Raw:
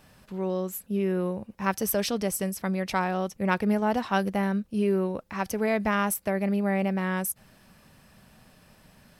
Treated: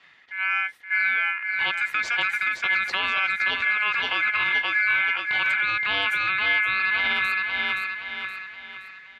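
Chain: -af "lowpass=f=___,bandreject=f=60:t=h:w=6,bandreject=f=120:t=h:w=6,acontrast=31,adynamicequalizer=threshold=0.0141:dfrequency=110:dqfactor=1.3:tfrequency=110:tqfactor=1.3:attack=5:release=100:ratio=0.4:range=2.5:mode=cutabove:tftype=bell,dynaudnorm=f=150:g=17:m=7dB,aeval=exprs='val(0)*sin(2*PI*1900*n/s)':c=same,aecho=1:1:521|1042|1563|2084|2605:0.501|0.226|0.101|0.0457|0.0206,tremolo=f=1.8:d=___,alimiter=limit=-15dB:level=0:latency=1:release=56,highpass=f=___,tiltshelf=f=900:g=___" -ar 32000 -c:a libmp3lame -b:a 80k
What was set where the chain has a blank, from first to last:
1900, 0.38, 58, -4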